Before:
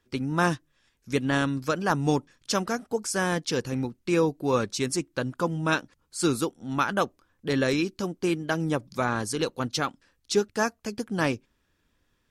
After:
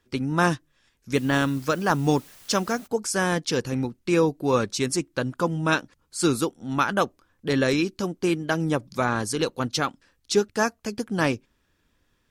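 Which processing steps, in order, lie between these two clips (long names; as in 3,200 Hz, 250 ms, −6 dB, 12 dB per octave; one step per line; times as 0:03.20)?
0:01.13–0:02.86: background noise white −53 dBFS
level +2.5 dB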